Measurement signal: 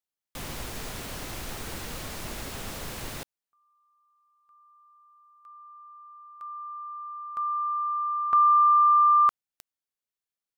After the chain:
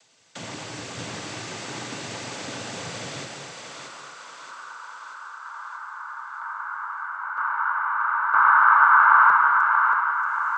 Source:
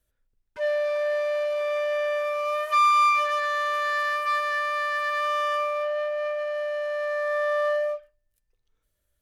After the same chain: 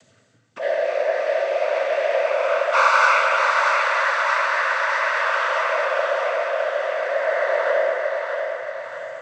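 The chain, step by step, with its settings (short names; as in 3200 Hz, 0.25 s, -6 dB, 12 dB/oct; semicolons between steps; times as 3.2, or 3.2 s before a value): upward compressor, threshold -33 dBFS; noise vocoder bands 16; on a send: thinning echo 0.631 s, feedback 54%, high-pass 440 Hz, level -4 dB; on the sum: non-linear reverb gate 0.29 s flat, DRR 1.5 dB; gain +1.5 dB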